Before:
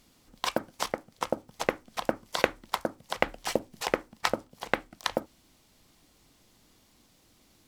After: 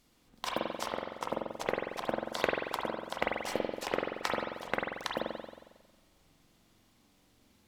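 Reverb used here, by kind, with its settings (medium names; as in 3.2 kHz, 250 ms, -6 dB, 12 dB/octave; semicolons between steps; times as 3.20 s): spring tank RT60 1.2 s, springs 45 ms, chirp 35 ms, DRR -2 dB; trim -7 dB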